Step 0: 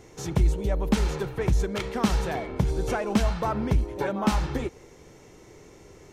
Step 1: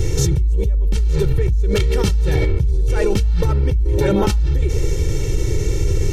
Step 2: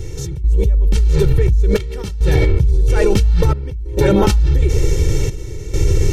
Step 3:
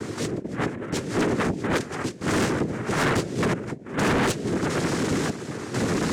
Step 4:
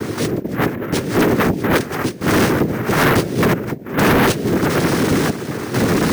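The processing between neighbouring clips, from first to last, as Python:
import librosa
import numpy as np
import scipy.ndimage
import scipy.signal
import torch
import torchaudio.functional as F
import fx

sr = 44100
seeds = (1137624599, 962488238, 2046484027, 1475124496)

y1 = fx.tone_stack(x, sr, knobs='10-0-1')
y1 = y1 + 0.89 * np.pad(y1, (int(2.2 * sr / 1000.0), 0))[:len(y1)]
y1 = fx.env_flatten(y1, sr, amount_pct=100)
y1 = y1 * 10.0 ** (3.0 / 20.0)
y2 = fx.step_gate(y1, sr, bpm=68, pattern='..xxxxxx', floor_db=-12.0, edge_ms=4.5)
y2 = y2 * 10.0 ** (3.5 / 20.0)
y3 = fx.noise_vocoder(y2, sr, seeds[0], bands=3)
y3 = 10.0 ** (-19.0 / 20.0) * np.tanh(y3 / 10.0 ** (-19.0 / 20.0))
y4 = np.repeat(scipy.signal.resample_poly(y3, 1, 3), 3)[:len(y3)]
y4 = y4 * 10.0 ** (8.5 / 20.0)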